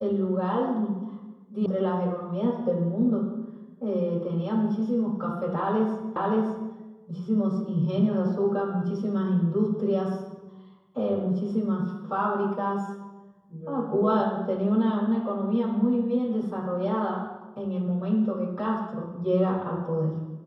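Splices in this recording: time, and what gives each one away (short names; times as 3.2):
1.66 sound cut off
6.16 repeat of the last 0.57 s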